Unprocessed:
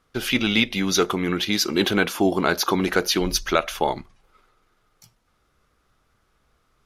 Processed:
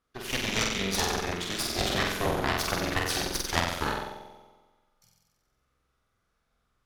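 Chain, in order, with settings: flutter echo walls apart 7.9 m, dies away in 1.3 s; added harmonics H 3 -7 dB, 6 -17 dB, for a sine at 0 dBFS; gain -4 dB

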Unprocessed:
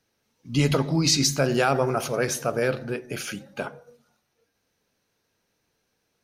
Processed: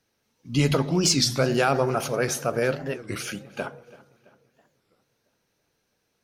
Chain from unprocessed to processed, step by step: darkening echo 0.333 s, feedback 51%, low-pass 4300 Hz, level -20 dB; record warp 33 1/3 rpm, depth 250 cents

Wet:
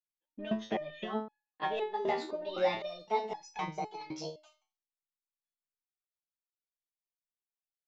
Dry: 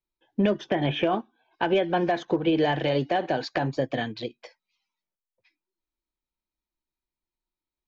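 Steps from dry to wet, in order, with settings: gliding pitch shift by +9.5 st starting unshifted; gate with hold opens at -52 dBFS; in parallel at -0.5 dB: level quantiser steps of 14 dB; on the sum: painted sound rise, 2.17–2.74, 230–2900 Hz -36 dBFS; on a send: echo 83 ms -21.5 dB; on the sum: downsampling 16000 Hz; stepped resonator 3.9 Hz 78–850 Hz

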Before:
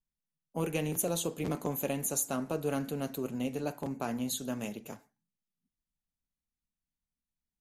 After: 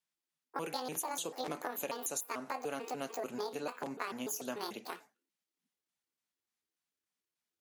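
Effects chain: trilling pitch shifter +9 st, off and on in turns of 0.147 s; weighting filter A; compressor, threshold -40 dBFS, peak gain reduction 11.5 dB; gain +5 dB

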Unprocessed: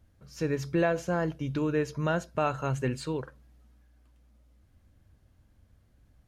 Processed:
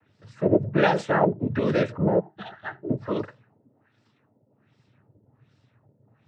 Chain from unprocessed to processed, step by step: LFO low-pass sine 1.3 Hz 420–4600 Hz; 2.19–2.89 octave resonator F, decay 0.19 s; noise vocoder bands 12; gain +5.5 dB

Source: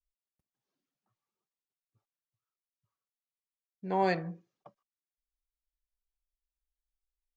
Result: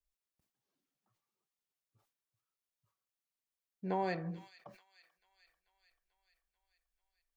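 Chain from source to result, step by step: compressor, threshold -31 dBFS, peak gain reduction 8.5 dB; thin delay 0.439 s, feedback 64%, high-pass 3300 Hz, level -10.5 dB; sustainer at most 130 dB/s

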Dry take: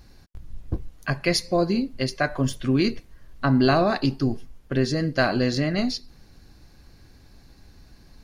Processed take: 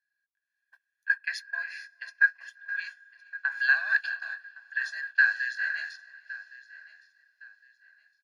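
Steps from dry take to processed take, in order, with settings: diffused feedback echo 0.451 s, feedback 44%, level -8.5 dB; hum 60 Hz, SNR 10 dB; gate -23 dBFS, range -18 dB; ladder high-pass 1600 Hz, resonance 90%; comb 1.2 ms, depth 81%; feedback echo 1.113 s, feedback 29%, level -22 dB; AGC gain up to 9.5 dB; 1.26–3.52 high shelf 5500 Hz -11 dB; gain -8.5 dB

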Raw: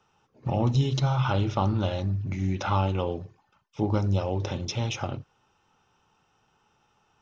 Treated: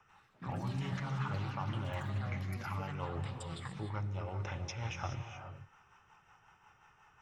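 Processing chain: ten-band EQ 250 Hz -10 dB, 500 Hz -6 dB, 1000 Hz +5 dB, 2000 Hz +9 dB, 4000 Hz -12 dB; reverse; compressor 6:1, threshold -40 dBFS, peak gain reduction 19.5 dB; reverse; rotary speaker horn 5.5 Hz; non-linear reverb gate 0.45 s rising, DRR 6.5 dB; echoes that change speed 92 ms, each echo +6 st, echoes 3, each echo -6 dB; gain +4 dB

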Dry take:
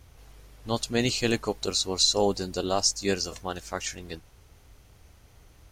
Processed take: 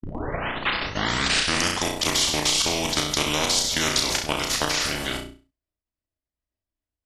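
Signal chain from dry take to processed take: tape start at the beginning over 1.47 s; level quantiser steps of 15 dB; gate -47 dBFS, range -59 dB; small resonant body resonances 350/780/2400/3700 Hz, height 9 dB; varispeed -19%; flutter echo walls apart 5.7 m, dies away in 0.35 s; spectral compressor 4:1; gain +8.5 dB

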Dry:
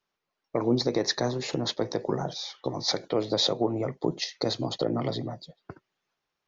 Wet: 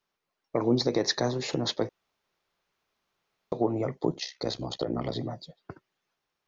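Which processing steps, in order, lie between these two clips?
1.89–3.52 room tone; 4.12–5.16 AM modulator 65 Hz, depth 55%

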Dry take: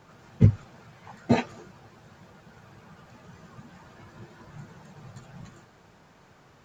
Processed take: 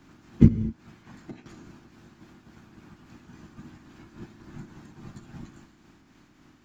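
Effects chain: spectral limiter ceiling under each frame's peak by 13 dB; resonant low shelf 380 Hz +8.5 dB, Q 3; 0.48–1.46 compressor 10:1, threshold -32 dBFS, peak gain reduction 25.5 dB; tremolo triangle 3.6 Hz, depth 45%; non-linear reverb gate 0.26 s flat, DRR 11 dB; gain -4 dB

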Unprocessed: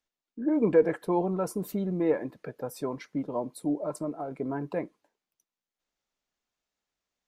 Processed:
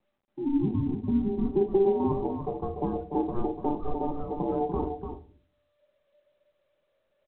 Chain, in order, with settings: 4.12–4.58 G.711 law mismatch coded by A; reverb removal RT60 0.63 s; tilt -4 dB/oct; compressor 4:1, threshold -23 dBFS, peak gain reduction 10.5 dB; ring modulator 590 Hz; echo 0.294 s -7 dB; shoebox room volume 280 m³, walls furnished, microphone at 0.95 m; low-pass sweep 240 Hz -> 540 Hz, 1.22–2.01; µ-law 64 kbps 8000 Hz

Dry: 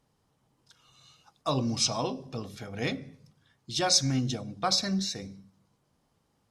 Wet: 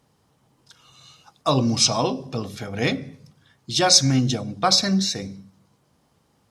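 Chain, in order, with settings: HPF 54 Hz; gain +8.5 dB

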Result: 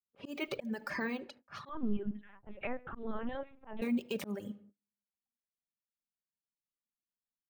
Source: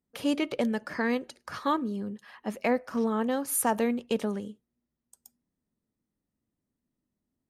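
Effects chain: limiter -26 dBFS, peak gain reduction 11.5 dB; bell 2500 Hz +5 dB 0.26 oct; feedback echo 77 ms, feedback 44%, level -16.5 dB; shoebox room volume 2000 m³, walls furnished, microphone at 1.2 m; careless resampling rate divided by 2×, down filtered, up zero stuff; 1.69–3.82 LPC vocoder at 8 kHz pitch kept; reverb removal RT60 1.1 s; low-pass opened by the level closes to 450 Hz, open at -29.5 dBFS; gate -57 dBFS, range -26 dB; auto swell 0.189 s

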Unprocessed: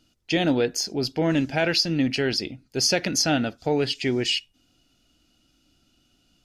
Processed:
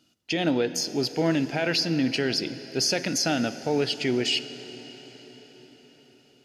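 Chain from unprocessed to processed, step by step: HPF 130 Hz 12 dB/oct; limiter -15 dBFS, peak gain reduction 6 dB; reverb RT60 5.8 s, pre-delay 28 ms, DRR 12.5 dB

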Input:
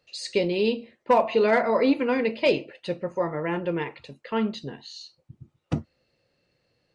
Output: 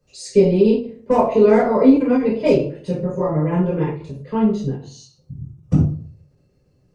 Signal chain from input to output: EQ curve 110 Hz 0 dB, 4000 Hz -21 dB, 5800 Hz -7 dB; reverb RT60 0.45 s, pre-delay 3 ms, DRR -8 dB; ending taper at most 130 dB/s; gain +3.5 dB

